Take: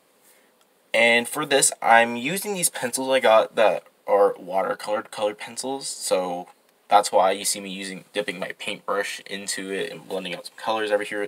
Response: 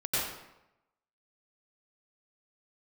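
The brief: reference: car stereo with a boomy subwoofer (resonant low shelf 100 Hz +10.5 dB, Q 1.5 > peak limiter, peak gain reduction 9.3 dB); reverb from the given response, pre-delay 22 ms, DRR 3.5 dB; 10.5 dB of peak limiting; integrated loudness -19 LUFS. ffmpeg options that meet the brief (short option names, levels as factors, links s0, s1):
-filter_complex "[0:a]alimiter=limit=0.211:level=0:latency=1,asplit=2[s0][s1];[1:a]atrim=start_sample=2205,adelay=22[s2];[s1][s2]afir=irnorm=-1:irlink=0,volume=0.237[s3];[s0][s3]amix=inputs=2:normalize=0,lowshelf=f=100:t=q:w=1.5:g=10.5,volume=3.35,alimiter=limit=0.335:level=0:latency=1"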